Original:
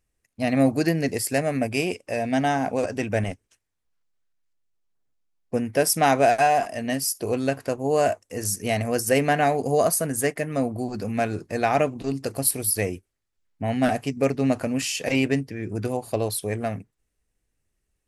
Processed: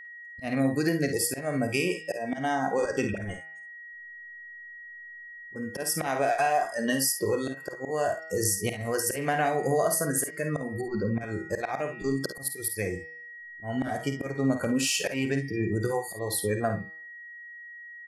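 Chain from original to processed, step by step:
noise reduction from a noise print of the clip's start 22 dB
dynamic equaliser 1,300 Hz, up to +4 dB, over −39 dBFS, Q 1.4
hum removal 160.6 Hz, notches 34
volume swells 565 ms
downward compressor 4 to 1, threshold −34 dBFS, peak gain reduction 15.5 dB
0:03.04–0:05.56: all-pass dispersion highs, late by 46 ms, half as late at 800 Hz
0:14.62–0:15.20: gain into a clipping stage and back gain 27.5 dB
steady tone 1,900 Hz −51 dBFS
0:10.81–0:11.21: high-frequency loss of the air 290 metres
ambience of single reflections 52 ms −9 dB, 67 ms −13.5 dB
level +8.5 dB

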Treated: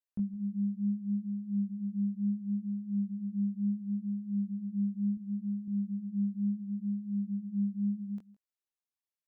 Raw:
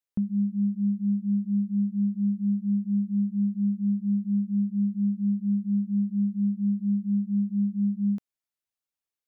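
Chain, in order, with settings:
chorus effect 0.71 Hz, delay 18 ms, depth 7.8 ms
0:05.17–0:05.68: high-pass filter 100 Hz
single-tap delay 162 ms −20.5 dB
level −5 dB

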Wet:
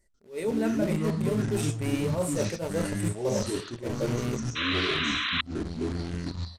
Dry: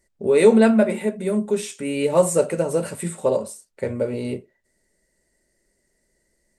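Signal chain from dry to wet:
in parallel at −6 dB: bit reduction 4 bits
on the sum: sound drawn into the spectrogram noise, 0:04.55–0:05.41, 990–4,100 Hz −12 dBFS
reversed playback
downward compressor 6 to 1, threshold −23 dBFS, peak gain reduction 17 dB
reversed playback
downsampling to 32,000 Hz
delay with pitch and tempo change per echo 142 ms, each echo −6 semitones, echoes 2
low-shelf EQ 87 Hz +9 dB
level that may rise only so fast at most 210 dB per second
level −4.5 dB

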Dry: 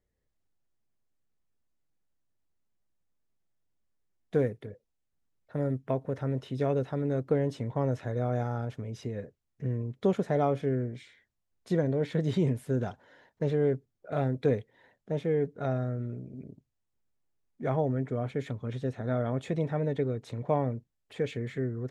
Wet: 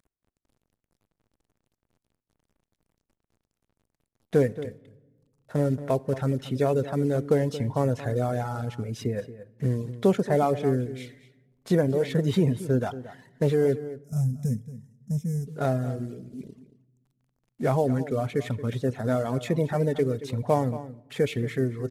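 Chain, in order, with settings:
variable-slope delta modulation 64 kbit/s
gain on a spectral selection 0:13.81–0:15.47, 250–5,000 Hz −24 dB
in parallel at −1.5 dB: brickwall limiter −24.5 dBFS, peak gain reduction 10.5 dB
on the sum: reverb reduction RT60 1.2 s
slap from a distant wall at 39 metres, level −14 dB
on a send at −21 dB: convolution reverb RT60 1.3 s, pre-delay 4 ms
on the sum: level +3 dB

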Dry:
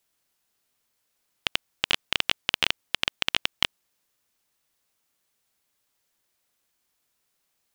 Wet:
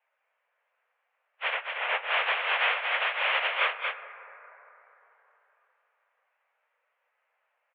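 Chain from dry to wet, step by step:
random phases in long frames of 100 ms
0:01.54–0:02.04: high-frequency loss of the air 250 metres
on a send: single-tap delay 232 ms −5.5 dB
on the sum: dense smooth reverb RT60 3.7 s, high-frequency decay 0.25×, DRR 12 dB
single-sideband voice off tune +250 Hz 240–2,200 Hz
level +7 dB

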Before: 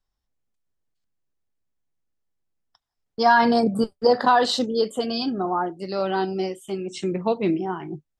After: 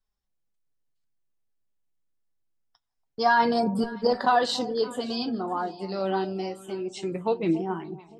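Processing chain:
delay that swaps between a low-pass and a high-pass 284 ms, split 850 Hz, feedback 52%, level −13.5 dB
flanger 0.25 Hz, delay 4.5 ms, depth 6.3 ms, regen +52%

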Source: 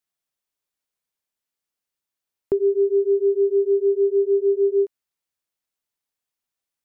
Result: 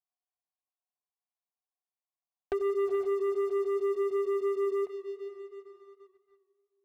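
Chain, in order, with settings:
formant resonators in series a
on a send: feedback delay with all-pass diffusion 461 ms, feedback 49%, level −13 dB
on the sum: leveller curve on the samples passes 3
feedback echo with a swinging delay time 89 ms, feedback 68%, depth 75 cents, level −19 dB
level +7.5 dB

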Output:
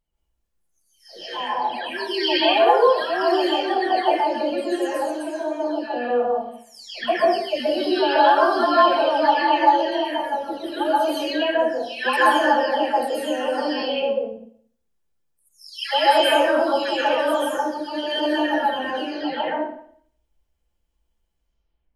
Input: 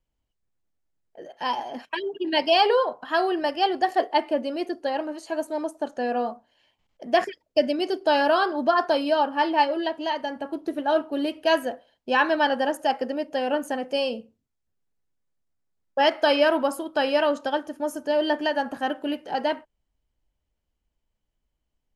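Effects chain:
every frequency bin delayed by itself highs early, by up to 610 ms
dense smooth reverb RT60 0.58 s, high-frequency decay 0.95×, pre-delay 115 ms, DRR −5.5 dB
level −1 dB

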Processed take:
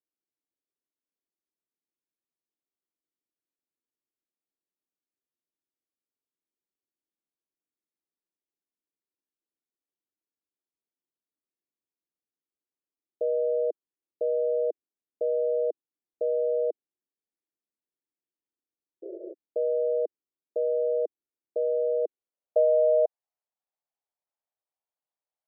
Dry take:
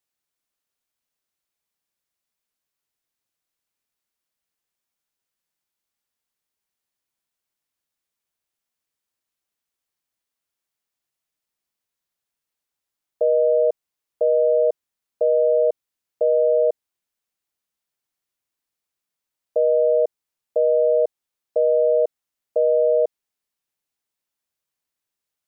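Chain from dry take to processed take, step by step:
sound drawn into the spectrogram noise, 0:19.02–0:19.34, 330–670 Hz −34 dBFS
band-pass filter sweep 320 Hz → 720 Hz, 0:22.01–0:22.66

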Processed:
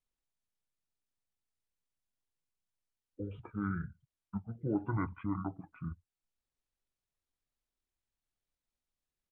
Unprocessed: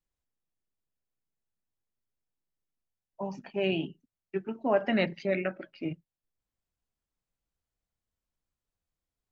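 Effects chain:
in parallel at −2 dB: downward compressor, threshold −38 dBFS, peak gain reduction 17 dB
on the sum: pitch shifter −11.5 semitones
level −8 dB

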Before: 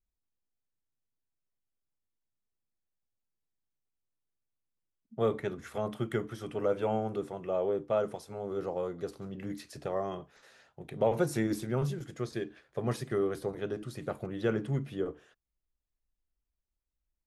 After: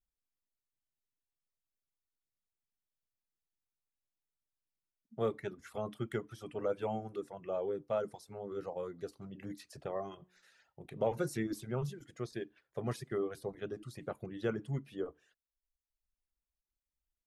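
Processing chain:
0:10.08–0:11.29: hum removal 182 Hz, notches 29
reverb reduction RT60 0.85 s
level −4.5 dB

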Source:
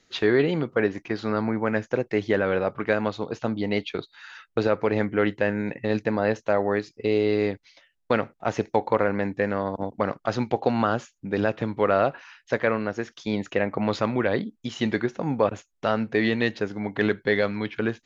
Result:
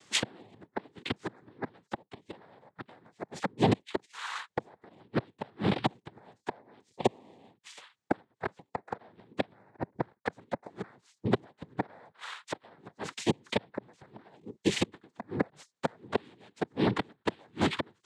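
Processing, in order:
gate with flip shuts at −15 dBFS, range −37 dB
cochlear-implant simulation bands 6
level +4.5 dB

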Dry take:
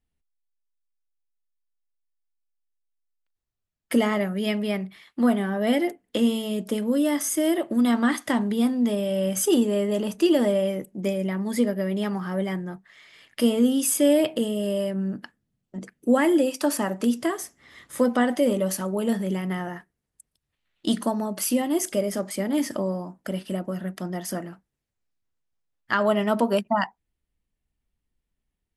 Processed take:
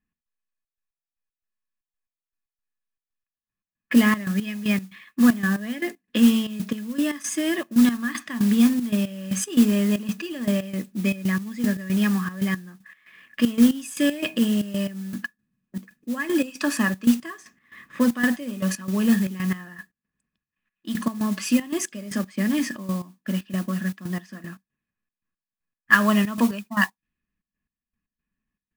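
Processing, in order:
low-pass that shuts in the quiet parts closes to 1,900 Hz, open at −20.5 dBFS
flat-topped bell 3,400 Hz +9 dB 3 octaves
hollow resonant body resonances 210/1,100/1,700/2,500 Hz, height 15 dB, ringing for 35 ms
noise that follows the level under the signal 19 dB
gate pattern "x.xxx.x.." 116 BPM −12 dB
level −7.5 dB

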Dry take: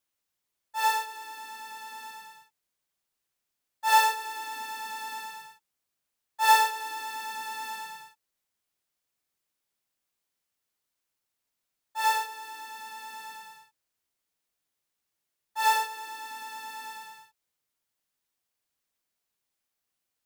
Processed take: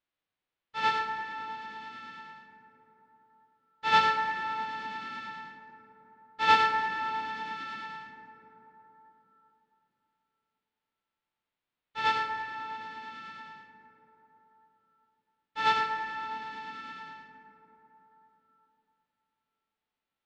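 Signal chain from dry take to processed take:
spectral envelope flattened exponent 0.1
low-pass filter 3,700 Hz 24 dB per octave
dense smooth reverb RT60 4.1 s, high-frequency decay 0.3×, DRR 5 dB
level −1 dB

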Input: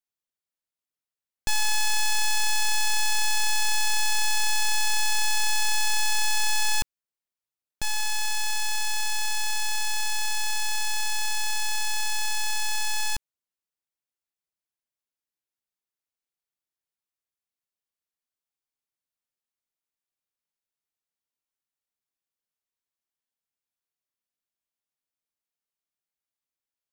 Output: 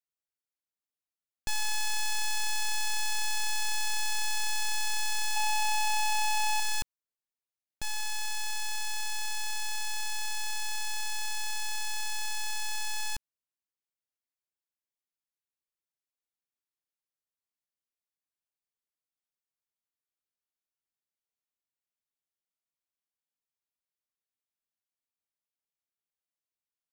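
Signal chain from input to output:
0:05.36–0:06.60: hollow resonant body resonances 790/2,700 Hz, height 15 dB, ringing for 30 ms
level −6.5 dB

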